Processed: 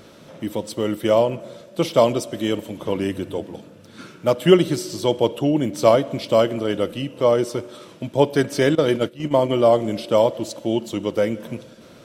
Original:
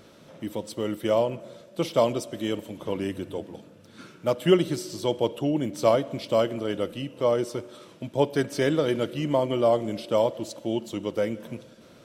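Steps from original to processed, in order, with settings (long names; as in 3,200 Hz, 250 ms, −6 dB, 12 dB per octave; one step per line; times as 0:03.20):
0:08.75–0:09.49: noise gate −26 dBFS, range −15 dB
level +6 dB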